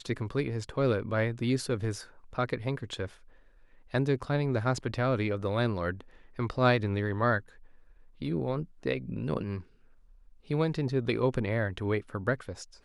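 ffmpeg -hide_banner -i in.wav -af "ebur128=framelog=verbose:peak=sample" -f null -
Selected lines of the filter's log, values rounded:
Integrated loudness:
  I:         -30.9 LUFS
  Threshold: -41.6 LUFS
Loudness range:
  LRA:         4.1 LU
  Threshold: -51.7 LUFS
  LRA low:   -33.7 LUFS
  LRA high:  -29.6 LUFS
Sample peak:
  Peak:      -11.4 dBFS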